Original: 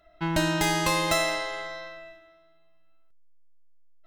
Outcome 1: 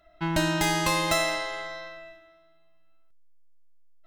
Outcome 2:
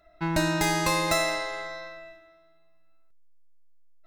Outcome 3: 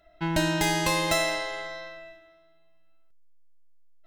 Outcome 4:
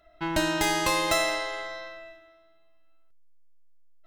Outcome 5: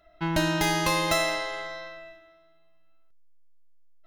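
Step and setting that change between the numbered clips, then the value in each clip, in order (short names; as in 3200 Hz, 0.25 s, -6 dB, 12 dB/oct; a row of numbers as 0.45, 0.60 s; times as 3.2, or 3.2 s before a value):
notch, frequency: 460, 3100, 1200, 170, 8000 Hz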